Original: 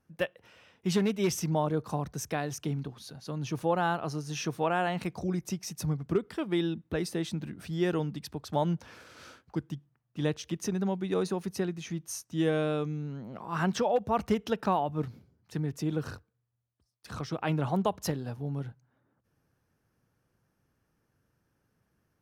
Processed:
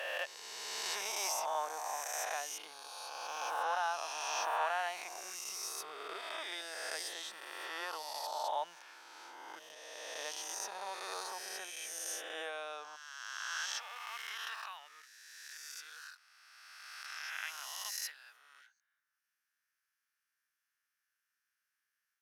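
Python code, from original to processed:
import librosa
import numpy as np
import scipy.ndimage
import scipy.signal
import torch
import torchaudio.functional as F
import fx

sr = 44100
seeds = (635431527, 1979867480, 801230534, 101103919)

y = fx.spec_swells(x, sr, rise_s=2.42)
y = fx.cheby1_highpass(y, sr, hz=fx.steps((0.0, 750.0), (12.95, 1600.0)), order=3)
y = y * librosa.db_to_amplitude(-6.0)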